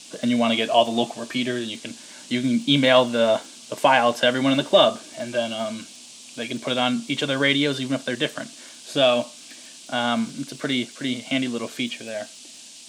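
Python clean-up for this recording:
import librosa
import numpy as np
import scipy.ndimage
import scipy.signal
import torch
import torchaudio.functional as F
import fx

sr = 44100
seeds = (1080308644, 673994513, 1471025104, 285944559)

y = fx.fix_declick_ar(x, sr, threshold=6.5)
y = fx.noise_reduce(y, sr, print_start_s=12.37, print_end_s=12.87, reduce_db=23.0)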